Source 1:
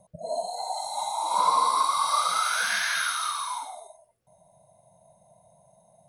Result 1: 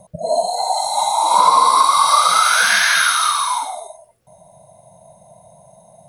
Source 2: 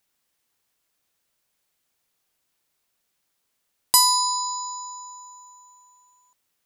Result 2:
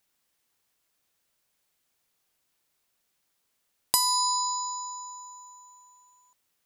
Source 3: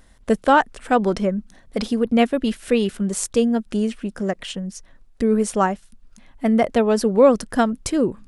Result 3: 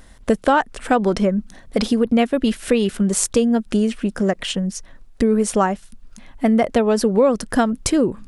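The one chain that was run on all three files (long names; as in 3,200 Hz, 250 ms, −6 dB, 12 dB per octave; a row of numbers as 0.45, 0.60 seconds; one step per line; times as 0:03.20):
downward compressor 3 to 1, threshold −21 dBFS
normalise the peak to −2 dBFS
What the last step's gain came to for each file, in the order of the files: +12.5, −0.5, +6.5 decibels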